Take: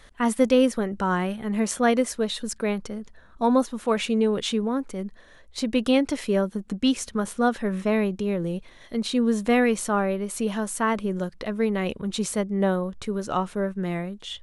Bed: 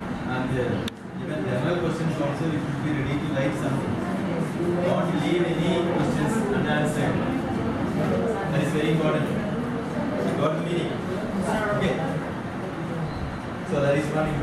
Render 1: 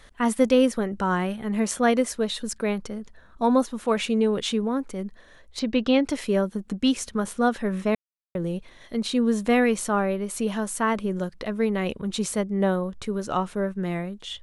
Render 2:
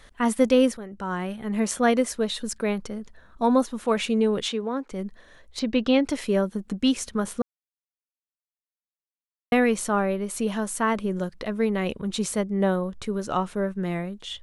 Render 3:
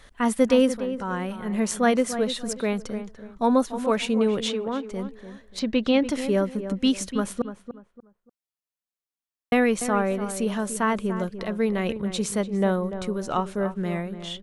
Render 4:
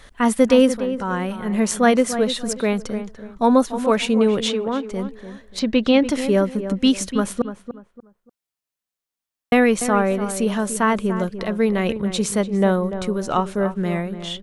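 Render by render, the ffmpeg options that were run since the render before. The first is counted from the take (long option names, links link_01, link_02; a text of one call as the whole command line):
ffmpeg -i in.wav -filter_complex "[0:a]asettb=1/sr,asplit=3[link_01][link_02][link_03];[link_01]atrim=end=5.594[link_04];[link_02]atrim=start=5.59:end=6.04,asetpts=PTS-STARTPTS,afade=type=in:duration=0.004:curve=qsin,afade=type=out:start_time=0.446:duration=0.004:curve=qsin,lowpass=frequency=5400:width=0.5412,lowpass=frequency=5400:width=1.3066[link_05];[link_03]atrim=start=6.036[link_06];[link_04][link_05]acrossfade=duration=0.004:curve1=hsin:curve2=qsin[link_07];[link_07][link_06]acrossfade=duration=0.004:curve1=qsin:curve2=hsin,asplit=3[link_08][link_09][link_10];[link_08]atrim=end=7.95,asetpts=PTS-STARTPTS,afade=type=out:start_time=7.946:duration=0.004:curve=hsin[link_11];[link_09]atrim=start=7.95:end=8.35,asetpts=PTS-STARTPTS,volume=0[link_12];[link_10]atrim=start=8.35,asetpts=PTS-STARTPTS,afade=type=in:duration=0.004:curve=hsin[link_13];[link_11][link_12][link_13]concat=n=3:v=0:a=1" out.wav
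ffmpeg -i in.wav -filter_complex "[0:a]asettb=1/sr,asplit=3[link_01][link_02][link_03];[link_01]atrim=end=4.484[link_04];[link_02]atrim=start=4.48:end=4.92,asetpts=PTS-STARTPTS,afade=type=in:duration=0.004:curve=qsin,afade=type=out:start_time=0.436:duration=0.004:curve=qsin,acrossover=split=240 7000:gain=0.112 1 0.178[link_05][link_06][link_07];[link_05][link_06][link_07]amix=inputs=3:normalize=0[link_08];[link_03]atrim=start=4.916[link_09];[link_04][link_08]acrossfade=duration=0.004:curve1=hsin:curve2=qsin[link_10];[link_10][link_09]acrossfade=duration=0.004:curve1=qsin:curve2=hsin,asplit=4[link_11][link_12][link_13][link_14];[link_11]atrim=end=0.77,asetpts=PTS-STARTPTS,afade=type=out:start_time=0.766:duration=0.004:curve=hsin:silence=0.223872[link_15];[link_12]atrim=start=0.77:end=7.42,asetpts=PTS-STARTPTS,afade=type=in:duration=0.87:silence=0.223872,afade=type=out:start_time=6.646:duration=0.004:curve=hsin[link_16];[link_13]atrim=start=7.42:end=9.52,asetpts=PTS-STARTPTS,volume=0[link_17];[link_14]atrim=start=9.52,asetpts=PTS-STARTPTS,afade=type=in:duration=0.004:curve=hsin[link_18];[link_15][link_16][link_17][link_18]concat=n=4:v=0:a=1" out.wav
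ffmpeg -i in.wav -filter_complex "[0:a]asplit=2[link_01][link_02];[link_02]adelay=292,lowpass=frequency=1800:poles=1,volume=-10.5dB,asplit=2[link_03][link_04];[link_04]adelay=292,lowpass=frequency=1800:poles=1,volume=0.29,asplit=2[link_05][link_06];[link_06]adelay=292,lowpass=frequency=1800:poles=1,volume=0.29[link_07];[link_01][link_03][link_05][link_07]amix=inputs=4:normalize=0" out.wav
ffmpeg -i in.wav -af "volume=5dB,alimiter=limit=-3dB:level=0:latency=1" out.wav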